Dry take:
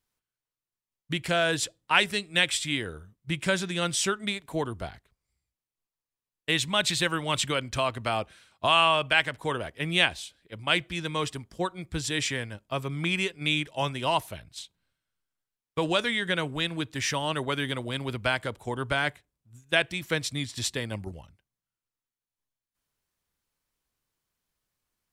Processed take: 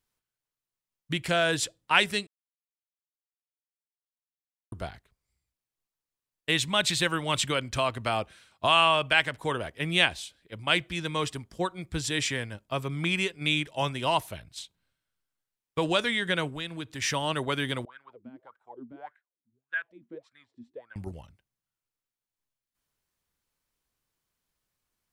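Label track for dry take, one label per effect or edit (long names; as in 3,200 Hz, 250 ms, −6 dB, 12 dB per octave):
2.270000	4.720000	silence
16.490000	17.020000	downward compressor 1.5 to 1, threshold −42 dBFS
17.850000	20.960000	LFO wah 1.7 Hz 230–1,600 Hz, Q 12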